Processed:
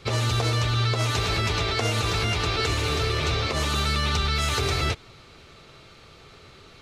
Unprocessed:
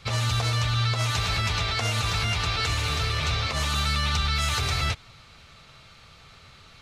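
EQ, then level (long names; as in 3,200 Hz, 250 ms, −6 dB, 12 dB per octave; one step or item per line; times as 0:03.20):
parametric band 370 Hz +13 dB 1 octave
0.0 dB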